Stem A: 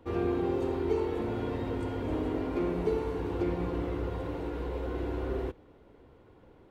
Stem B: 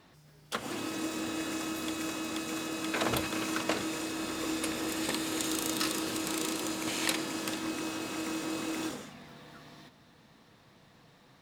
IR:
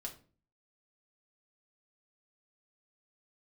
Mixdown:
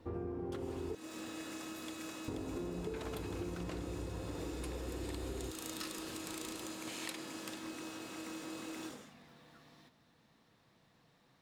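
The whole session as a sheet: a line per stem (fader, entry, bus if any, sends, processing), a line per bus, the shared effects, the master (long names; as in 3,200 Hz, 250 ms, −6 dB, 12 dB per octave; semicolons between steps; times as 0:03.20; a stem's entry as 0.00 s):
−5.0 dB, 0.00 s, muted 0:00.95–0:02.28, no send, low-pass filter 1,500 Hz 12 dB per octave; parametric band 130 Hz +6 dB 2 octaves
−9.5 dB, 0.00 s, no send, no processing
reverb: not used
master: downward compressor 6 to 1, threshold −38 dBFS, peak gain reduction 11 dB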